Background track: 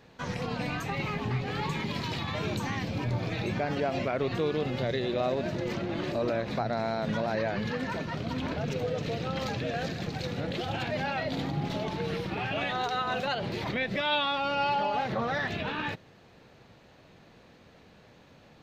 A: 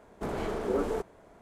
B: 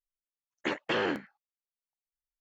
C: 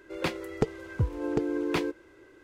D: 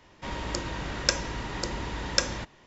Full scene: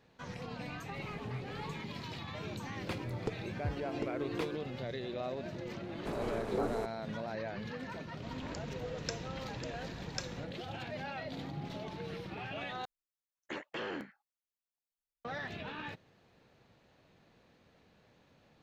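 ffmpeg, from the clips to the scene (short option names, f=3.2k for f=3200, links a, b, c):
-filter_complex "[1:a]asplit=2[a][b];[0:a]volume=-10dB[c];[a]acompressor=threshold=-34dB:ratio=6:attack=3.2:release=140:knee=1:detection=peak[d];[2:a]acompressor=threshold=-33dB:ratio=2.5:attack=1.3:release=37:knee=1:detection=peak[e];[c]asplit=2[f][g];[f]atrim=end=12.854[h];[e]atrim=end=2.4,asetpts=PTS-STARTPTS,volume=-5dB[i];[g]atrim=start=15.246[j];[d]atrim=end=1.41,asetpts=PTS-STARTPTS,volume=-13dB,afade=t=in:d=0.004:c=hsin,afade=t=out:st=1.406:d=0.004:c=hsin,adelay=730[k];[3:a]atrim=end=2.43,asetpts=PTS-STARTPTS,volume=-10.5dB,afade=t=in:d=0.004:c=hsin,afade=t=out:st=2.426:d=0.004:c=hsin,adelay=2650[l];[b]atrim=end=1.41,asetpts=PTS-STARTPTS,volume=-5.5dB,afade=t=in:d=0.004:c=hsin,afade=t=out:st=1.406:d=0.004:c=hsin,adelay=5840[m];[4:a]atrim=end=2.66,asetpts=PTS-STARTPTS,volume=-16dB,afade=t=in:d=0.004:c=hsin,afade=t=out:st=2.656:d=0.004:c=hsin,adelay=8000[n];[h][i]acrossfade=d=0.004:c1=hsin:c2=hsin[o];[o][j]acrossfade=d=0.004:c1=hsin:c2=hsin[p];[p][k][l][m][n]amix=inputs=5:normalize=0"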